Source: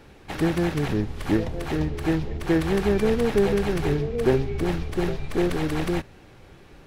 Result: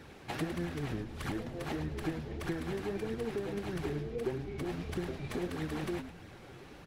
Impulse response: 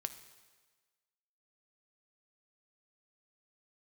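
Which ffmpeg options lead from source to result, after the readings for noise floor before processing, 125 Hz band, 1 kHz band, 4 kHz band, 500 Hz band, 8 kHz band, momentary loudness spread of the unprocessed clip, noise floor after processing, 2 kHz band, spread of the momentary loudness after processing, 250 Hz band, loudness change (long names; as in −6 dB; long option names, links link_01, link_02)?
−49 dBFS, −12.0 dB, −11.0 dB, −10.5 dB, −14.0 dB, −10.0 dB, 6 LU, −52 dBFS, −11.0 dB, 4 LU, −13.0 dB, −13.0 dB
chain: -filter_complex "[0:a]highpass=78,acompressor=threshold=-34dB:ratio=5,flanger=delay=0.5:depth=7.9:regen=36:speed=1.6:shape=sinusoidal,asplit=2[link_01][link_02];[link_02]asplit=4[link_03][link_04][link_05][link_06];[link_03]adelay=106,afreqshift=-89,volume=-9.5dB[link_07];[link_04]adelay=212,afreqshift=-178,volume=-18.4dB[link_08];[link_05]adelay=318,afreqshift=-267,volume=-27.2dB[link_09];[link_06]adelay=424,afreqshift=-356,volume=-36.1dB[link_10];[link_07][link_08][link_09][link_10]amix=inputs=4:normalize=0[link_11];[link_01][link_11]amix=inputs=2:normalize=0,volume=2.5dB"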